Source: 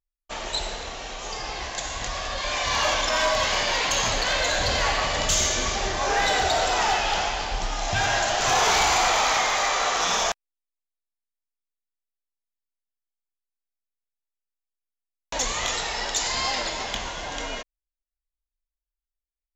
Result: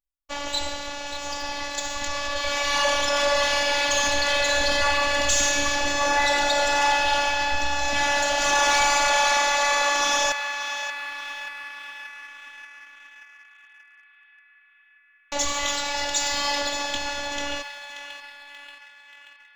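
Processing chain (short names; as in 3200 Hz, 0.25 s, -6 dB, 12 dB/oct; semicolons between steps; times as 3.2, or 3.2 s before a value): robotiser 287 Hz; narrowing echo 0.582 s, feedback 74%, band-pass 1900 Hz, level -7 dB; sample leveller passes 1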